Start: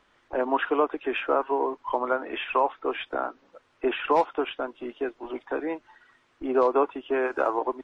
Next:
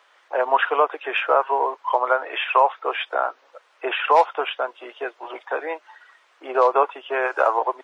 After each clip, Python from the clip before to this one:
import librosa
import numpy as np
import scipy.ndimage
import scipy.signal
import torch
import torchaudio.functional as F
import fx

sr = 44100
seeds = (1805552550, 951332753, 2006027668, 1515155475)

y = scipy.signal.sosfilt(scipy.signal.butter(4, 520.0, 'highpass', fs=sr, output='sos'), x)
y = y * 10.0 ** (7.5 / 20.0)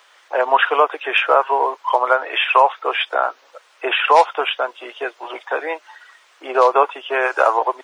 y = fx.high_shelf(x, sr, hz=3300.0, db=10.5)
y = y * 10.0 ** (3.0 / 20.0)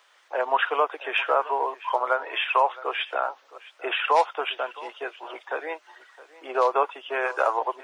y = x + 10.0 ** (-19.0 / 20.0) * np.pad(x, (int(665 * sr / 1000.0), 0))[:len(x)]
y = y * 10.0 ** (-8.0 / 20.0)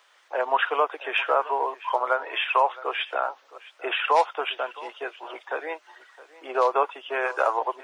y = x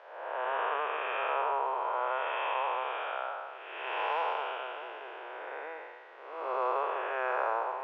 y = fx.spec_blur(x, sr, span_ms=428.0)
y = fx.bandpass_edges(y, sr, low_hz=490.0, high_hz=2600.0)